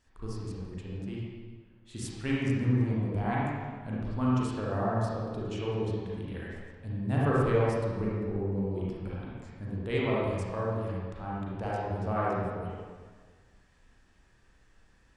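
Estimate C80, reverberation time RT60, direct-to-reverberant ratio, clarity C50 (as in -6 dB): -1.0 dB, 1.6 s, -7.0 dB, -4.5 dB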